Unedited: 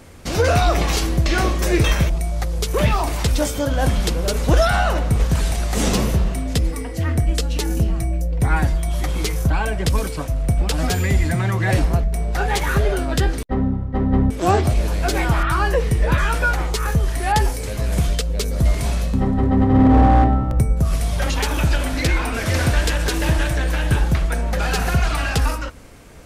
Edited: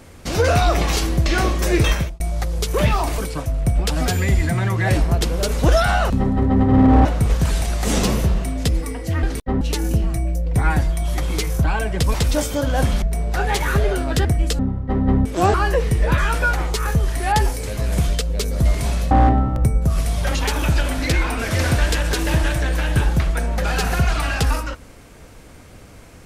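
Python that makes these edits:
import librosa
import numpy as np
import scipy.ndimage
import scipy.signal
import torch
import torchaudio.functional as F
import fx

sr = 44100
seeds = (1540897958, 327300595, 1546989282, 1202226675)

y = fx.edit(x, sr, fx.fade_out_span(start_s=1.9, length_s=0.3),
    fx.swap(start_s=3.18, length_s=0.88, other_s=10.0, other_length_s=2.03),
    fx.swap(start_s=7.13, length_s=0.34, other_s=13.26, other_length_s=0.38),
    fx.cut(start_s=14.59, length_s=0.95),
    fx.move(start_s=19.11, length_s=0.95, to_s=4.95), tone=tone)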